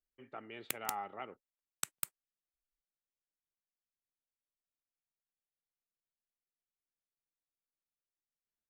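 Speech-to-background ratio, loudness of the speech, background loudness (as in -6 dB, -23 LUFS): -4.0 dB, -45.5 LUFS, -41.5 LUFS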